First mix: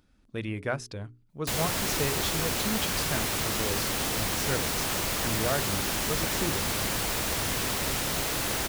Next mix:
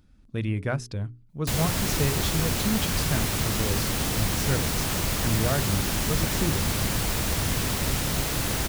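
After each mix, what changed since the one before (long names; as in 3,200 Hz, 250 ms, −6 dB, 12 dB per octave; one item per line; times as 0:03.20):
master: add bass and treble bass +9 dB, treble +1 dB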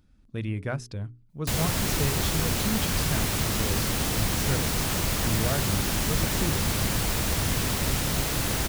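speech −3.0 dB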